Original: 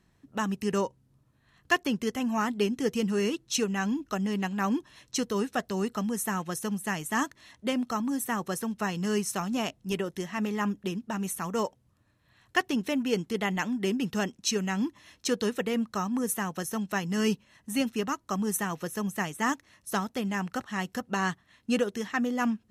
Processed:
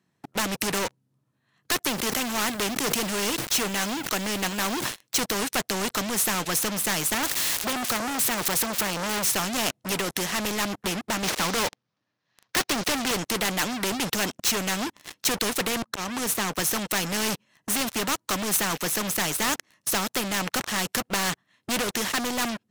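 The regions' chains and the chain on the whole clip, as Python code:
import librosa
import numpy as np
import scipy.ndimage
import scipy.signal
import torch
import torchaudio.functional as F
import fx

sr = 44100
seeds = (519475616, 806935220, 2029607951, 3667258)

y = fx.chain(x, sr, fx.law_mismatch(coded='A'),
    fx.highpass(hz=83.0, slope=6),
    fx.sustainer(db_per_s=140.0), at=(1.87, 5.21))
y = fx.chain(y, sr, fx.crossing_spikes(level_db=-26.5),
    fx.lowpass(hz=3700.0, slope=6),
    fx.transformer_sat(knee_hz=1800.0), at=(7.14, 9.3))
y = fx.chain(y, sr, fx.cvsd(bps=32000),
    fx.highpass(hz=190.0, slope=6),
    fx.leveller(passes=2), at=(11.23, 13.11))
y = fx.chain(y, sr, fx.high_shelf(hz=2500.0, db=-6.5),
    fx.auto_swell(attack_ms=436.0),
    fx.band_squash(depth_pct=40), at=(15.82, 16.59))
y = scipy.signal.sosfilt(scipy.signal.butter(4, 120.0, 'highpass', fs=sr, output='sos'), y)
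y = fx.leveller(y, sr, passes=5)
y = fx.spectral_comp(y, sr, ratio=2.0)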